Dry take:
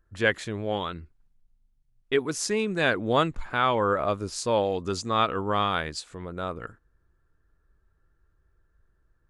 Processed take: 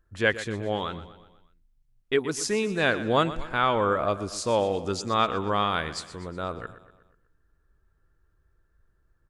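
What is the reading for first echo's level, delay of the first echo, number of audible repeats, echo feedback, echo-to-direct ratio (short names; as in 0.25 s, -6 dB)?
-14.5 dB, 0.122 s, 4, 52%, -13.0 dB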